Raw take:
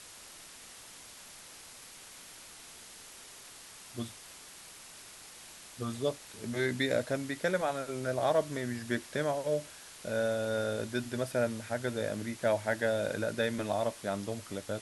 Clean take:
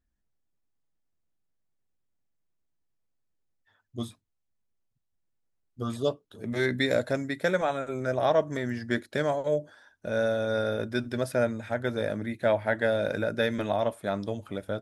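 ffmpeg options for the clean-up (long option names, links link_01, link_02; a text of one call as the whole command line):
ffmpeg -i in.wav -af "afwtdn=0.004,asetnsamples=nb_out_samples=441:pad=0,asendcmd='3.24 volume volume 4.5dB',volume=0dB" out.wav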